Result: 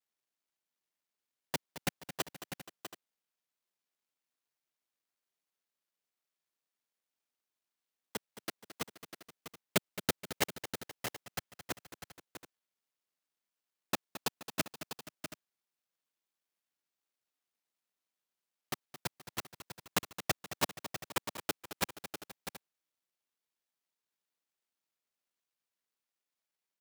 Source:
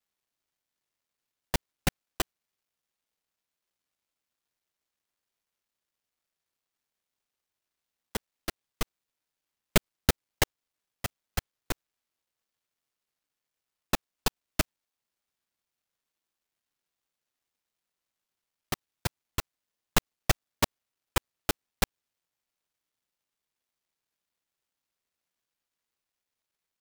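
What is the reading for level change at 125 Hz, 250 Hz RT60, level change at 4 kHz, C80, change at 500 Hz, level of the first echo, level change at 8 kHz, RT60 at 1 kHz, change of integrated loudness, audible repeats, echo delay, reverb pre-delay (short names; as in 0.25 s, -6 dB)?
-10.5 dB, none, -4.5 dB, none, -5.0 dB, -12.5 dB, -4.5 dB, none, -6.0 dB, 4, 0.219 s, none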